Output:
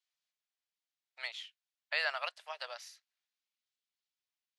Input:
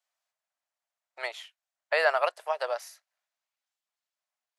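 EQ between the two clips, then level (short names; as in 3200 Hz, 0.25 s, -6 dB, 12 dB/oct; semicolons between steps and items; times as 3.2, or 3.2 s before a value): band-pass 3700 Hz, Q 1.2; 0.0 dB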